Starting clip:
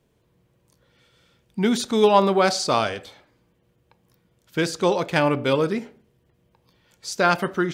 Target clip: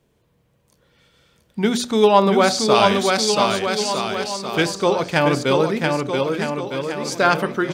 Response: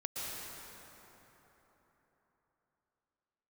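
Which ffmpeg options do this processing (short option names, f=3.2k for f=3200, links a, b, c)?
-filter_complex "[0:a]bandreject=f=60:t=h:w=6,bandreject=f=120:t=h:w=6,bandreject=f=180:t=h:w=6,bandreject=f=240:t=h:w=6,bandreject=f=300:t=h:w=6,bandreject=f=360:t=h:w=6,aecho=1:1:680|1258|1749|2167|2522:0.631|0.398|0.251|0.158|0.1,asplit=3[a][b][c];[a]afade=t=out:st=2.74:d=0.02[d];[b]adynamicequalizer=threshold=0.02:dfrequency=1600:dqfactor=0.7:tfrequency=1600:tqfactor=0.7:attack=5:release=100:ratio=0.375:range=3:mode=boostabove:tftype=highshelf,afade=t=in:st=2.74:d=0.02,afade=t=out:st=4.62:d=0.02[e];[c]afade=t=in:st=4.62:d=0.02[f];[d][e][f]amix=inputs=3:normalize=0,volume=2.5dB"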